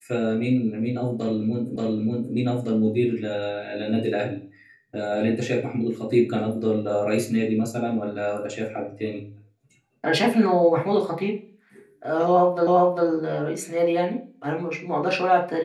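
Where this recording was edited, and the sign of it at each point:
1.76 s: repeat of the last 0.58 s
12.67 s: repeat of the last 0.4 s

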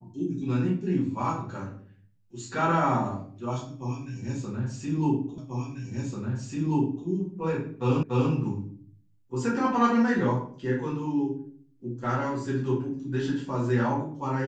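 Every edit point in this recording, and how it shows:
5.38 s: repeat of the last 1.69 s
8.03 s: repeat of the last 0.29 s

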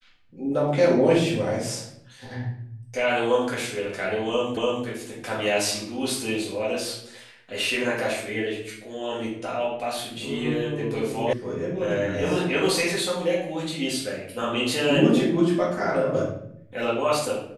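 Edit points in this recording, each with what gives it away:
4.57 s: repeat of the last 0.29 s
11.33 s: sound stops dead

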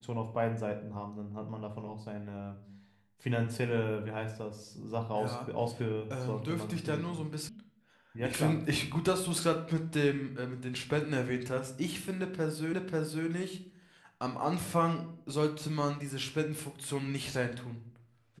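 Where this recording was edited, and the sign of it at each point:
7.49 s: sound stops dead
12.73 s: repeat of the last 0.54 s

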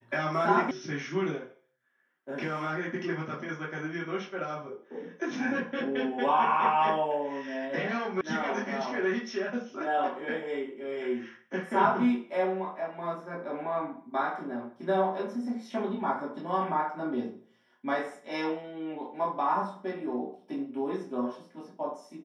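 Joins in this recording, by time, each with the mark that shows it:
0.71 s: sound stops dead
8.21 s: sound stops dead

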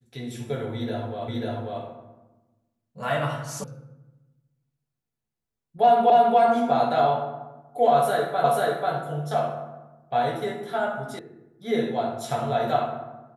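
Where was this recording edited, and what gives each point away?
1.28 s: repeat of the last 0.54 s
3.64 s: sound stops dead
6.10 s: repeat of the last 0.28 s
8.44 s: repeat of the last 0.49 s
11.19 s: sound stops dead

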